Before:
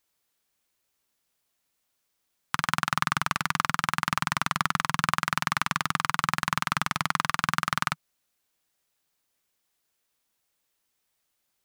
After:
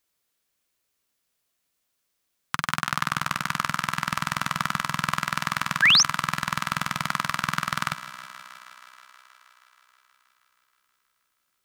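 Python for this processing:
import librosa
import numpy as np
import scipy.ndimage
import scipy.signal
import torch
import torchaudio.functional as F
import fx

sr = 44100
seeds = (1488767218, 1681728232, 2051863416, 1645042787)

y = fx.peak_eq(x, sr, hz=850.0, db=-4.5, octaves=0.27)
y = fx.echo_thinned(y, sr, ms=159, feedback_pct=81, hz=190.0, wet_db=-14.5)
y = fx.spec_paint(y, sr, seeds[0], shape='rise', start_s=5.82, length_s=0.21, low_hz=1500.0, high_hz=6600.0, level_db=-16.0)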